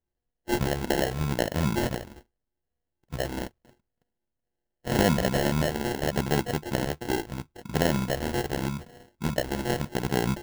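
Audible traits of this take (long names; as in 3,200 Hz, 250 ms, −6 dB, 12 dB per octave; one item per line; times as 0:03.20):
a buzz of ramps at a fixed pitch in blocks of 16 samples
phaser sweep stages 4, 0.81 Hz, lowest notch 140–2,700 Hz
aliases and images of a low sample rate 1,200 Hz, jitter 0%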